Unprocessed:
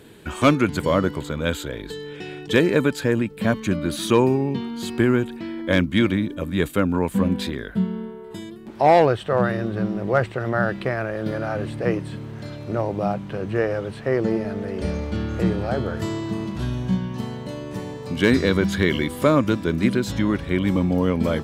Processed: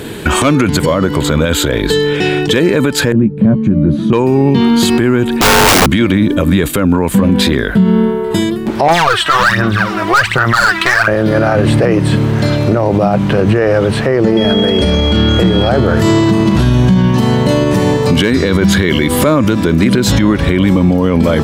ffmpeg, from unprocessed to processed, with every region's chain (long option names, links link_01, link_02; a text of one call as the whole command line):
ffmpeg -i in.wav -filter_complex "[0:a]asettb=1/sr,asplit=3[link_01][link_02][link_03];[link_01]atrim=end=3.124[link_04];[link_02]atrim=start=3.12:end=4.13,asetpts=PTS-STARTPTS,afade=type=in:duration=0.004:curve=qsin,afade=type=out:start_time=1.006:duration=0.004:curve=qsin,bandpass=frequency=150:width_type=q:width=1.2,asplit=2[link_05][link_06];[link_06]adelay=14,volume=-7dB[link_07];[link_05][link_07]amix=inputs=2:normalize=0,atrim=end_sample=44541[link_08];[link_03]atrim=start=4.126[link_09];[link_04][link_08]acrossfade=duration=0.004:curve1=hsin:curve2=qsin[link_10];[link_10][link_09]acrossfade=duration=0.004:curve1=qsin:curve2=hsin,asettb=1/sr,asplit=3[link_11][link_12][link_13];[link_11]atrim=end=5.414[link_14];[link_12]atrim=start=5.41:end=5.86,asetpts=PTS-STARTPTS,afade=type=in:duration=0.004:curve=qsin,afade=type=out:start_time=0.446:duration=0.004:curve=qsin,equalizer=frequency=120:width=0.35:gain=8.5,acompressor=threshold=-17dB:ratio=20:attack=3.2:release=140:knee=1:detection=peak,aeval=exprs='(mod(16.8*val(0)+1,2)-1)/16.8':channel_layout=same[link_15];[link_13]atrim=start=5.856[link_16];[link_14][link_15]acrossfade=duration=0.004:curve1=hsin:curve2=qsin[link_17];[link_17][link_16]acrossfade=duration=0.004:curve1=qsin:curve2=hsin,asettb=1/sr,asplit=3[link_18][link_19][link_20];[link_18]atrim=end=8.884[link_21];[link_19]atrim=start=8.88:end=11.08,asetpts=PTS-STARTPTS,afade=type=in:duration=0.004:curve=qsin,afade=type=out:start_time=2.196:duration=0.004:curve=qsin,lowshelf=frequency=790:width_type=q:width=1.5:gain=-13.5,asoftclip=type=hard:threshold=-25dB,aphaser=in_gain=1:out_gain=1:delay=3.1:decay=0.7:speed=1.3:type=sinusoidal[link_22];[link_20]atrim=start=11.076[link_23];[link_21][link_22]acrossfade=duration=0.004:curve1=hsin:curve2=qsin[link_24];[link_24][link_23]acrossfade=duration=0.004:curve1=qsin:curve2=hsin,asettb=1/sr,asplit=3[link_25][link_26][link_27];[link_25]atrim=end=14.374[link_28];[link_26]atrim=start=14.37:end=15.69,asetpts=PTS-STARTPTS,afade=type=in:duration=0.004:curve=qsin,afade=type=out:start_time=1.316:duration=0.004:curve=qsin,bandreject=frequency=50:width_type=h:width=6,bandreject=frequency=100:width_type=h:width=6,bandreject=frequency=150:width_type=h:width=6,asoftclip=type=hard:threshold=-11.5dB,aeval=exprs='val(0)+0.02*sin(2*PI*3300*n/s)':channel_layout=same[link_29];[link_27]atrim=start=15.686[link_30];[link_28][link_29]acrossfade=duration=0.004:curve1=hsin:curve2=qsin[link_31];[link_31][link_30]acrossfade=duration=0.004:curve1=qsin:curve2=hsin,acompressor=threshold=-25dB:ratio=2,alimiter=level_in=23dB:limit=-1dB:release=50:level=0:latency=1,volume=-1dB" out.wav